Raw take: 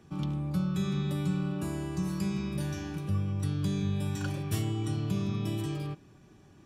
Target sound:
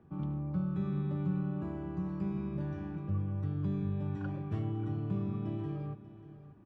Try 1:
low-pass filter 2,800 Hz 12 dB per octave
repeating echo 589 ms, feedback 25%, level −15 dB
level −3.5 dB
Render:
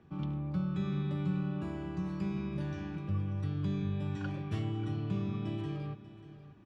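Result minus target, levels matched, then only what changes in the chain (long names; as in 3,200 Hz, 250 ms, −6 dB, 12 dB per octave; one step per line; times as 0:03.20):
2,000 Hz band +5.5 dB
change: low-pass filter 1,300 Hz 12 dB per octave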